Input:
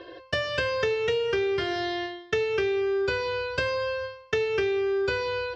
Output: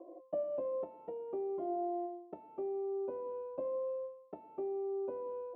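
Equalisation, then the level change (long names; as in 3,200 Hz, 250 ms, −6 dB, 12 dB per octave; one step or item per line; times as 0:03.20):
Chebyshev high-pass filter 280 Hz, order 2
transistor ladder low-pass 800 Hz, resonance 30%
phaser with its sweep stopped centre 440 Hz, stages 6
+2.5 dB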